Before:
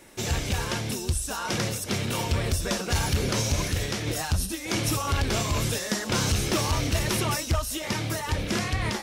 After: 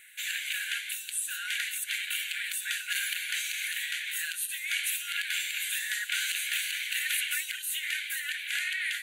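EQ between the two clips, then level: brick-wall FIR high-pass 1400 Hz; fixed phaser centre 2300 Hz, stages 4; +4.0 dB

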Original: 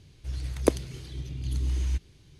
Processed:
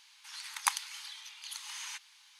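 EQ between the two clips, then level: brick-wall FIR high-pass 800 Hz; +6.0 dB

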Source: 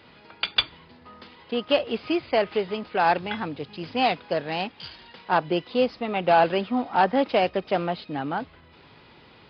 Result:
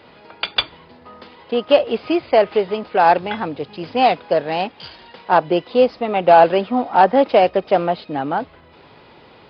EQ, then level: bell 600 Hz +7 dB 1.8 oct; +2.5 dB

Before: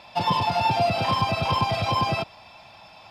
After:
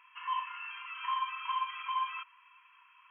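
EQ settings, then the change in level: brick-wall FIR band-pass 940–3300 Hz; tilt shelf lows +4 dB, about 1500 Hz; -8.5 dB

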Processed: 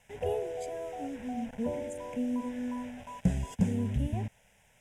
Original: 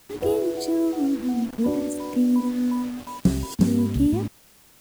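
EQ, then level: LPF 6600 Hz 12 dB/oct; fixed phaser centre 1200 Hz, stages 6; -3.0 dB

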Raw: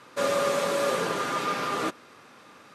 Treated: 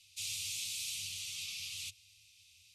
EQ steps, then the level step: Chebyshev band-stop 110–2500 Hz, order 4; bell 99 Hz +12.5 dB 0.6 oct; fixed phaser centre 440 Hz, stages 6; 0.0 dB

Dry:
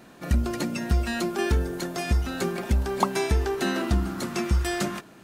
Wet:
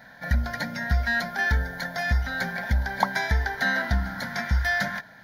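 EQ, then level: bell 1600 Hz +12 dB 1.1 oct; fixed phaser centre 1800 Hz, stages 8; 0.0 dB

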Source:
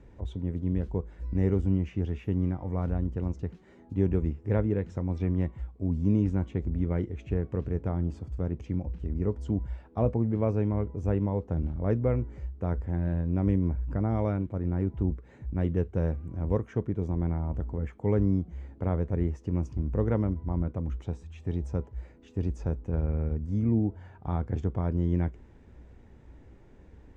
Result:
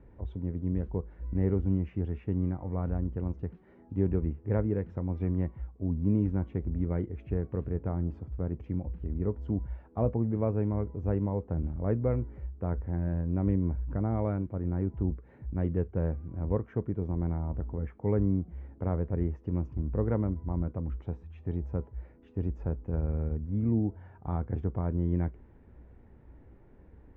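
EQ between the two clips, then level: LPF 1900 Hz 12 dB/oct; -2.0 dB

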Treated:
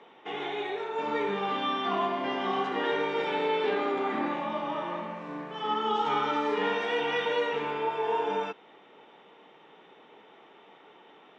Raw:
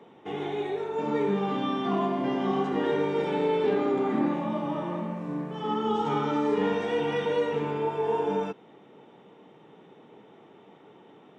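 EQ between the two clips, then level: HPF 1400 Hz 6 dB/oct; LPF 4300 Hz 12 dB/oct; +7.0 dB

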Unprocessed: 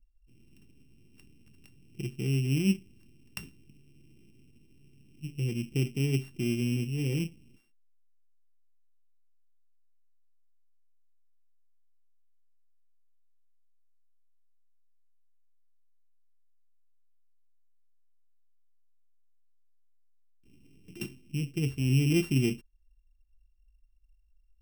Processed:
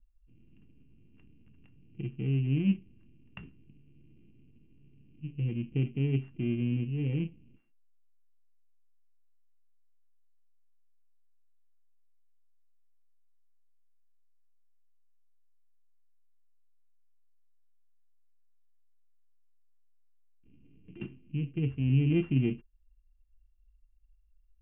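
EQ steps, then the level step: steep low-pass 3400 Hz 72 dB/oct; air absorption 450 m; notch 380 Hz, Q 12; 0.0 dB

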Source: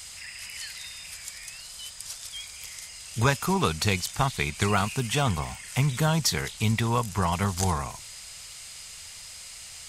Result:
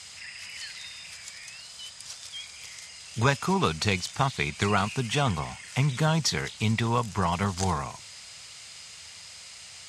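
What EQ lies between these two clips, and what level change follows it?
HPF 91 Hz 12 dB/oct; LPF 6800 Hz 12 dB/oct; 0.0 dB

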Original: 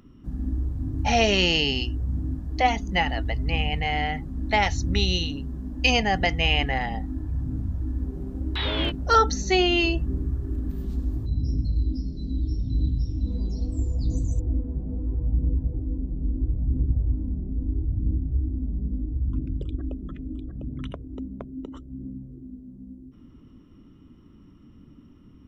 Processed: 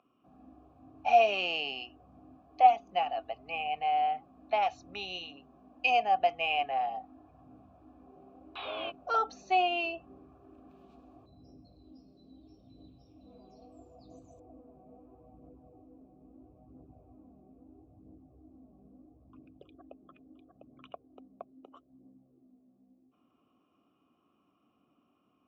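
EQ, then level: vowel filter a; HPF 63 Hz; low shelf 250 Hz -5 dB; +4.0 dB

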